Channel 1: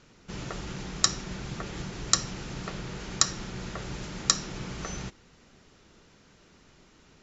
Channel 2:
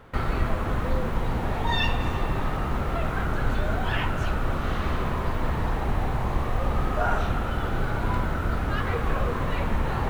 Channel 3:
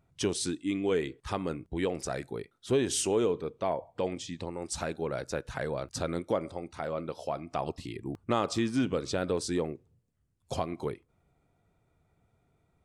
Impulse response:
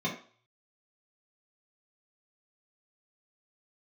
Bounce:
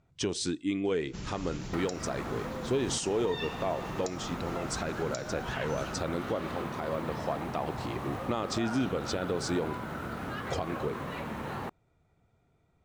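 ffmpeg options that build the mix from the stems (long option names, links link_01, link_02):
-filter_complex "[0:a]adelay=850,volume=-4.5dB[link_01];[1:a]highpass=190,adelay=1600,volume=-0.5dB[link_02];[2:a]lowpass=frequency=7900:width=0.5412,lowpass=frequency=7900:width=1.3066,volume=1dB[link_03];[link_01][link_02]amix=inputs=2:normalize=0,bass=frequency=250:gain=5,treble=frequency=4000:gain=3,acompressor=threshold=-34dB:ratio=6,volume=0dB[link_04];[link_03][link_04]amix=inputs=2:normalize=0,alimiter=limit=-20dB:level=0:latency=1:release=132"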